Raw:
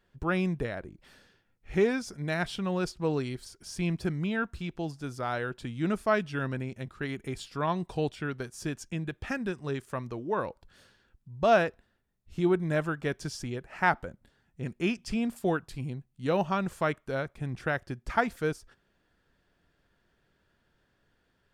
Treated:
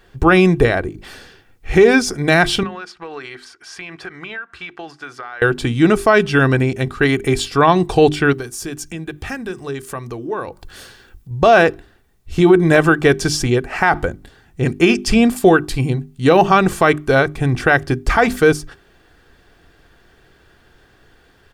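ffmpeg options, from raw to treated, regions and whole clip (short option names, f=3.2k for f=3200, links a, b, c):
-filter_complex "[0:a]asettb=1/sr,asplit=3[a][b][c];[a]atrim=end=2.634[d];[b]atrim=start=2.63:end=5.42,asetpts=PTS-STARTPTS,afade=t=in:d=0.004:c=qsin,afade=t=out:st=2.786:d=0.004:c=qsin,bandpass=f=1.6k:t=q:w=1.5,acompressor=threshold=-46dB:ratio=12:attack=3.2:release=140:knee=1:detection=peak[e];[c]atrim=start=5.416[f];[d][e]acrossfade=d=0.004:c1=hsin:c2=qsin[g];[g][f]acrossfade=d=0.004:c1=qsin:c2=hsin,asettb=1/sr,asplit=3[h][i][j];[h]atrim=end=8.334[k];[i]atrim=start=8.33:end=11.31,asetpts=PTS-STARTPTS,afade=t=in:d=0.004:c=qsin,afade=t=out:st=2.976:d=0.004:c=qsin,highshelf=f=9.2k:g=9.5,bandreject=f=50:t=h:w=6,bandreject=f=100:t=h:w=6,bandreject=f=150:t=h:w=6,acompressor=threshold=-52dB:ratio=2:attack=3.2:release=140:knee=1:detection=peak[l];[j]atrim=start=11.306[m];[k][l]acrossfade=d=0.004:c1=hsin:c2=qsin[n];[n][m]acrossfade=d=0.004:c1=qsin:c2=hsin,bandreject=f=50:t=h:w=6,bandreject=f=100:t=h:w=6,bandreject=f=150:t=h:w=6,bandreject=f=200:t=h:w=6,bandreject=f=250:t=h:w=6,bandreject=f=300:t=h:w=6,bandreject=f=350:t=h:w=6,bandreject=f=400:t=h:w=6,aecho=1:1:2.6:0.37,alimiter=level_in=20.5dB:limit=-1dB:release=50:level=0:latency=1,volume=-1dB"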